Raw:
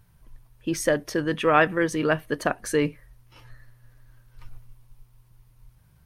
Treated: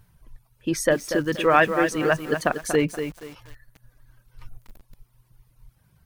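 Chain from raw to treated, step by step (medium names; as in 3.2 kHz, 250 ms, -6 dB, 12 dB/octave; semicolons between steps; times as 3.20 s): reverb removal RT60 1.1 s; bit-crushed delay 238 ms, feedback 35%, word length 7-bit, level -8 dB; trim +2 dB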